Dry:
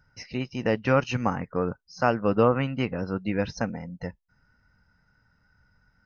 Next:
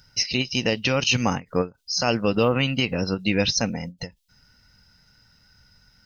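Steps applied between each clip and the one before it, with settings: resonant high shelf 2300 Hz +13.5 dB, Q 1.5; limiter -15.5 dBFS, peak gain reduction 8 dB; ending taper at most 300 dB/s; gain +5.5 dB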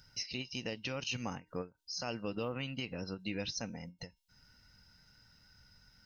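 compressor 1.5:1, threshold -50 dBFS, peak gain reduction 12 dB; resonator 310 Hz, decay 0.38 s, harmonics odd, mix 50%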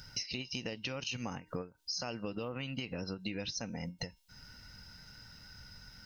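compressor 12:1, threshold -45 dBFS, peak gain reduction 12.5 dB; gain +10 dB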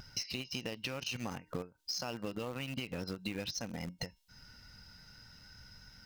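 vibrato 0.57 Hz 13 cents; in parallel at -10 dB: bit-crush 6-bit; on the sum: gain -2.5 dB

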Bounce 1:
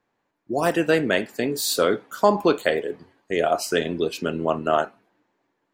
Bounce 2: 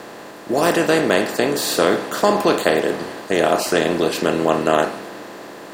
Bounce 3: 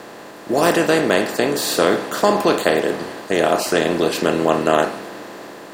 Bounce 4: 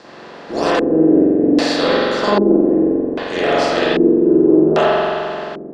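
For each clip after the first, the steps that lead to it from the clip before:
per-bin compression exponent 0.4; gain -1 dB
AGC; gain -1 dB
added harmonics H 6 -24 dB, 8 -36 dB, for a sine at -1.5 dBFS; spring tank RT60 2.4 s, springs 44 ms, chirp 60 ms, DRR -9 dB; LFO low-pass square 0.63 Hz 330–5000 Hz; gain -7.5 dB

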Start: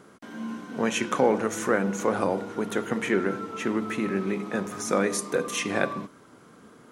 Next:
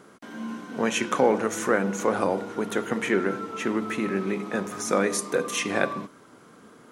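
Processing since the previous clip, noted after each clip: low shelf 140 Hz -5.5 dB; gain +1.5 dB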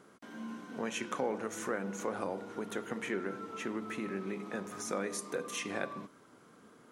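compressor 1.5:1, threshold -31 dBFS, peak gain reduction 6 dB; gain -8 dB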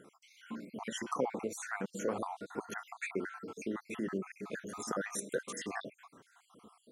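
random spectral dropouts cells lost 60%; gain +2.5 dB

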